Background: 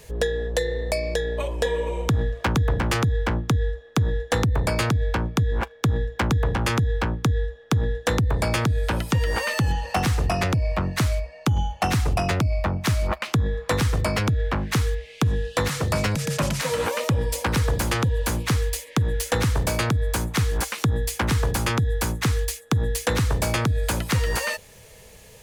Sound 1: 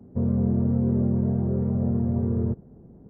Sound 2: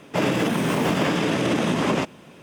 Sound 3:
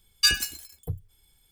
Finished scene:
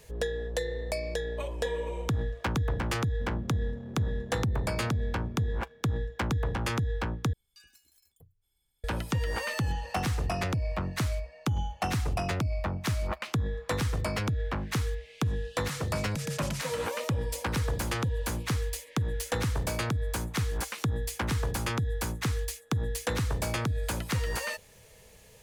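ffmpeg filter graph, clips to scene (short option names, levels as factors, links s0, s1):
-filter_complex "[0:a]volume=0.422[s0];[1:a]asoftclip=type=hard:threshold=0.1[s1];[3:a]acompressor=threshold=0.0158:ratio=6:attack=0.14:release=209:knee=6:detection=rms[s2];[s0]asplit=2[s3][s4];[s3]atrim=end=7.334[s5];[s2]atrim=end=1.51,asetpts=PTS-STARTPTS,volume=0.188[s6];[s4]atrim=start=8.836[s7];[s1]atrim=end=3.09,asetpts=PTS-STARTPTS,volume=0.141,afade=t=in:d=0.004:c=hsin,afade=t=out:st=3.086:d=0.004:c=hsin,adelay=3040[s8];[s5][s6]acrossfade=d=0.004:c1=hsin:c2=hsin[s9];[s9][s7]acrossfade=d=0.004:c1=hsin:c2=hsin[s10];[s10][s8]amix=inputs=2:normalize=0"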